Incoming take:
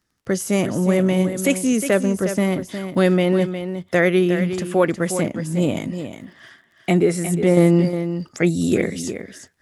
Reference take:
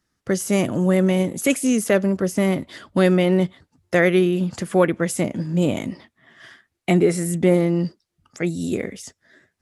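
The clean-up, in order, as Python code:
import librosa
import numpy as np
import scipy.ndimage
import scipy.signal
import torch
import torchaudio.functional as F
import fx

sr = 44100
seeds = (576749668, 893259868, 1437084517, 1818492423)

y = fx.fix_declick_ar(x, sr, threshold=6.5)
y = fx.fix_echo_inverse(y, sr, delay_ms=360, level_db=-9.5)
y = fx.gain(y, sr, db=fx.steps((0.0, 0.0), (7.57, -5.5)))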